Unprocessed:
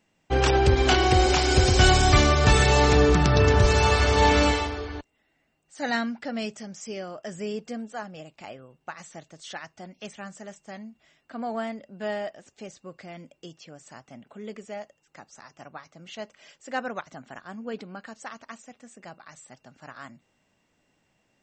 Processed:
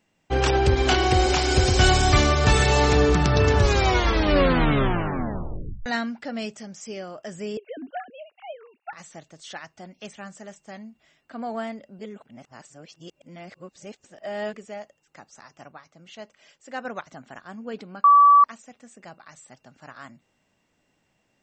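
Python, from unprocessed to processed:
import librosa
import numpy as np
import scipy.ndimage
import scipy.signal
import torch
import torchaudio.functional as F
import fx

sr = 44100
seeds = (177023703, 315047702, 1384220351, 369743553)

y = fx.sine_speech(x, sr, at=(7.57, 8.93))
y = fx.edit(y, sr, fx.tape_stop(start_s=3.57, length_s=2.29),
    fx.reverse_span(start_s=11.99, length_s=2.55),
    fx.clip_gain(start_s=15.72, length_s=1.13, db=-3.5),
    fx.bleep(start_s=18.04, length_s=0.4, hz=1150.0, db=-10.0), tone=tone)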